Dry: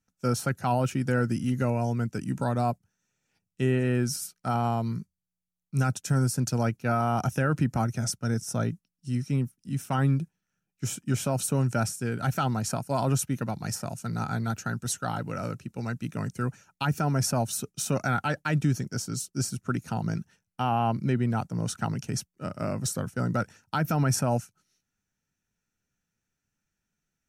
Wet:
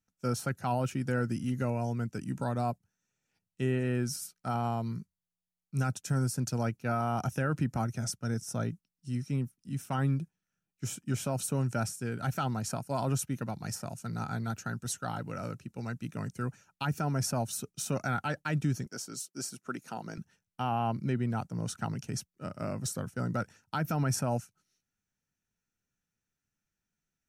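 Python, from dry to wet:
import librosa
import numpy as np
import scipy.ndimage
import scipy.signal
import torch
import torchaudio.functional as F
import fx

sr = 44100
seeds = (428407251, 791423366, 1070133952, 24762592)

y = fx.highpass(x, sr, hz=290.0, slope=12, at=(18.86, 20.18))
y = y * 10.0 ** (-5.0 / 20.0)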